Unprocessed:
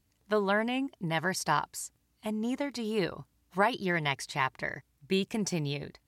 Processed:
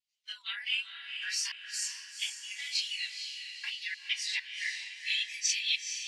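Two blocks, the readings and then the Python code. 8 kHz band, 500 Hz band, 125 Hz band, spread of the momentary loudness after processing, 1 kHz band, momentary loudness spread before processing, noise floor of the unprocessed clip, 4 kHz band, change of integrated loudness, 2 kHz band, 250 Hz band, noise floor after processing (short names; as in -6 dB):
+6.5 dB, under -40 dB, under -40 dB, 9 LU, under -25 dB, 11 LU, -74 dBFS, +8.0 dB, -2.0 dB, -1.5 dB, under -40 dB, -59 dBFS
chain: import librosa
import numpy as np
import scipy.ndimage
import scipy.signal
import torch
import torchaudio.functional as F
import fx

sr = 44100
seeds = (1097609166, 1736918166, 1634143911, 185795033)

p1 = fx.phase_scramble(x, sr, seeds[0], window_ms=100)
p2 = fx.recorder_agc(p1, sr, target_db=-16.0, rise_db_per_s=27.0, max_gain_db=30)
p3 = fx.step_gate(p2, sr, bpm=99, pattern='xxxxxx..xx.xx.xx', floor_db=-60.0, edge_ms=4.5)
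p4 = scipy.signal.sosfilt(scipy.signal.butter(2, 5000.0, 'lowpass', fs=sr, output='sos'), p3)
p5 = fx.level_steps(p4, sr, step_db=15)
p6 = p4 + F.gain(torch.from_numpy(p5), 3.0).numpy()
p7 = scipy.signal.sosfilt(scipy.signal.cheby2(4, 80, 440.0, 'highpass', fs=sr, output='sos'), p6)
p8 = fx.vibrato(p7, sr, rate_hz=1.5, depth_cents=40.0)
p9 = fx.noise_reduce_blind(p8, sr, reduce_db=13)
y = p9 + fx.echo_diffused(p9, sr, ms=465, feedback_pct=45, wet_db=-6.5, dry=0)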